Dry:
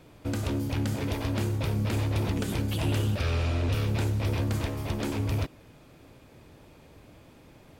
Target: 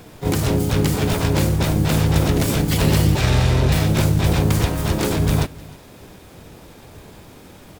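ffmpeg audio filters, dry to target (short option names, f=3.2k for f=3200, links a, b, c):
-filter_complex "[0:a]acontrast=86,crystalizer=i=1:c=0,asplit=3[a][b][c];[b]asetrate=29433,aresample=44100,atempo=1.49831,volume=-2dB[d];[c]asetrate=66075,aresample=44100,atempo=0.66742,volume=0dB[e];[a][d][e]amix=inputs=3:normalize=0,asplit=2[f][g];[g]aecho=0:1:305:0.0794[h];[f][h]amix=inputs=2:normalize=0,volume=-1dB"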